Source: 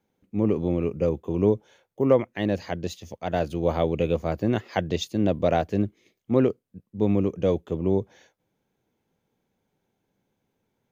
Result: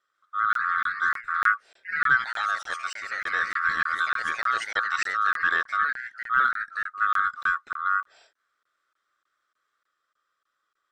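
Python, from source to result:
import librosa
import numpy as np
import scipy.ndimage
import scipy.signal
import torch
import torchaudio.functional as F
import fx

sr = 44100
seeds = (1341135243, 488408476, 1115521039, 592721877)

y = fx.band_swap(x, sr, width_hz=1000)
y = scipy.signal.sosfilt(scipy.signal.butter(2, 5300.0, 'lowpass', fs=sr, output='sos'), y)
y = fx.bass_treble(y, sr, bass_db=-8, treble_db=10)
y = fx.echo_pitch(y, sr, ms=145, semitones=2, count=3, db_per_echo=-6.0)
y = fx.buffer_crackle(y, sr, first_s=0.53, period_s=0.3, block=1024, kind='zero')
y = y * 10.0 ** (-2.5 / 20.0)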